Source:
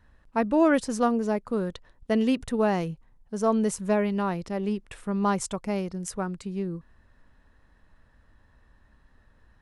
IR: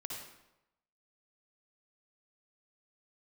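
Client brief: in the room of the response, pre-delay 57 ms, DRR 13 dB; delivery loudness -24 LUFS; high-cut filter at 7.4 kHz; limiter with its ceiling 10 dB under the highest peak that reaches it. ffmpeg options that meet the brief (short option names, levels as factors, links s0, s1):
-filter_complex "[0:a]lowpass=7400,alimiter=limit=0.0891:level=0:latency=1,asplit=2[s0][s1];[1:a]atrim=start_sample=2205,adelay=57[s2];[s1][s2]afir=irnorm=-1:irlink=0,volume=0.251[s3];[s0][s3]amix=inputs=2:normalize=0,volume=2.24"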